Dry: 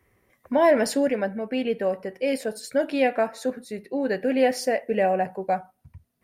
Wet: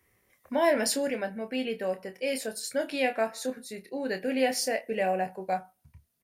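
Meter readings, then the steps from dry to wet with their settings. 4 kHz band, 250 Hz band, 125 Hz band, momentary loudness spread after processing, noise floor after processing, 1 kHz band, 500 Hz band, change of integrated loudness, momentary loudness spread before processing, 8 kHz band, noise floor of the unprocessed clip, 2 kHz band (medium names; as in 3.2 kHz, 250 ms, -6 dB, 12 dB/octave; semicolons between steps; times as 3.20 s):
+1.5 dB, -6.5 dB, no reading, 8 LU, -71 dBFS, -5.0 dB, -6.0 dB, -5.0 dB, 8 LU, +3.5 dB, -71 dBFS, -2.5 dB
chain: treble shelf 2.3 kHz +11 dB; doubling 27 ms -8 dB; trim -7.5 dB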